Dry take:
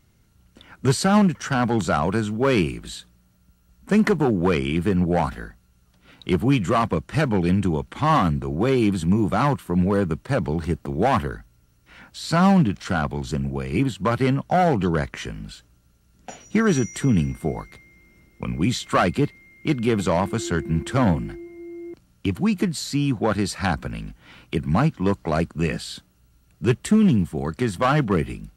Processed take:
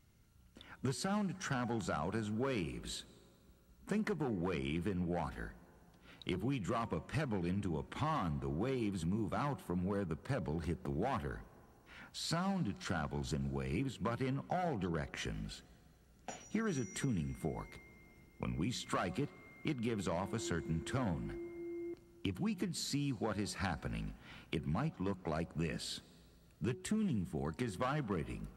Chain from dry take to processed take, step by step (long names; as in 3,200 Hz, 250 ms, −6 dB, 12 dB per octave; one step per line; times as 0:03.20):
downward compressor 4 to 1, threshold −27 dBFS, peak gain reduction 12.5 dB
hum removal 184.8 Hz, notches 5
on a send: convolution reverb RT60 3.2 s, pre-delay 118 ms, DRR 21.5 dB
on the sum: level −8 dB